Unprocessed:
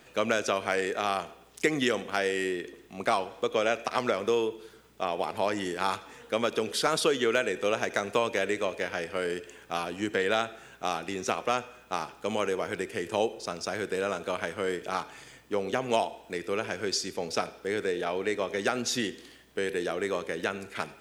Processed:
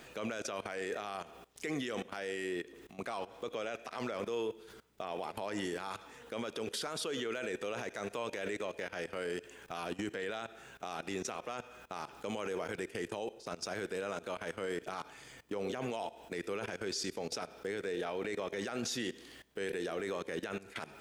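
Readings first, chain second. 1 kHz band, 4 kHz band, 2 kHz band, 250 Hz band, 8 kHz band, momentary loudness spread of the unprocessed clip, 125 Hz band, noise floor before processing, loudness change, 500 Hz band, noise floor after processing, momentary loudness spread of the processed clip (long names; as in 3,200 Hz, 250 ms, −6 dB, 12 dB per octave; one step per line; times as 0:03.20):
−11.0 dB, −9.0 dB, −10.0 dB, −7.0 dB, −7.5 dB, 8 LU, −6.5 dB, −55 dBFS, −9.5 dB, −9.5 dB, −56 dBFS, 8 LU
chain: output level in coarse steps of 19 dB
brickwall limiter −31.5 dBFS, peak gain reduction 10 dB
level +3.5 dB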